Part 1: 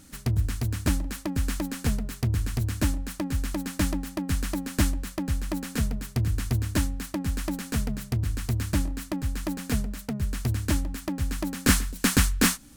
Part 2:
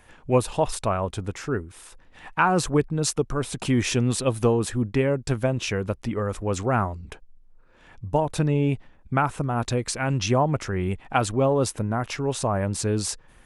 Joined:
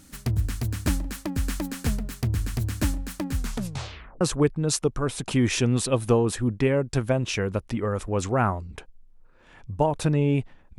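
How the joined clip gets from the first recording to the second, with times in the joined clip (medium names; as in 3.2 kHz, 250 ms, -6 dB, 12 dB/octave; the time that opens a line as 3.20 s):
part 1
3.35 s: tape stop 0.86 s
4.21 s: go over to part 2 from 2.55 s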